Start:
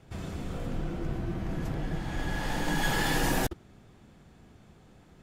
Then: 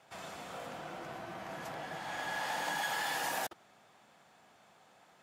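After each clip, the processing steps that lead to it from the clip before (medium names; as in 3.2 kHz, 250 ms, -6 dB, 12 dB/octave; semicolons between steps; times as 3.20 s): high-pass 210 Hz 12 dB/octave; resonant low shelf 500 Hz -10.5 dB, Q 1.5; compression, threshold -32 dBFS, peak gain reduction 6.5 dB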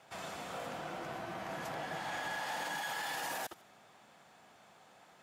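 feedback echo behind a high-pass 75 ms, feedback 37%, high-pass 2.2 kHz, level -21.5 dB; peak limiter -32 dBFS, peak gain reduction 8.5 dB; trim +2 dB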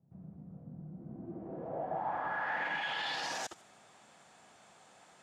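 low-pass sweep 170 Hz -> 8.4 kHz, 0.92–3.62 s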